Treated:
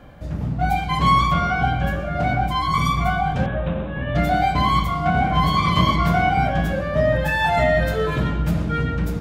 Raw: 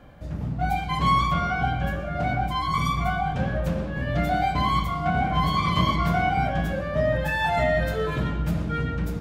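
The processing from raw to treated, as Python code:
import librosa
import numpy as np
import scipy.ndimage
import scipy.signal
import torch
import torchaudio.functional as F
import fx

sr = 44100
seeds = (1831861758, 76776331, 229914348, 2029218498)

y = fx.cheby_ripple(x, sr, hz=3800.0, ripple_db=3, at=(3.46, 4.15))
y = y * 10.0 ** (4.5 / 20.0)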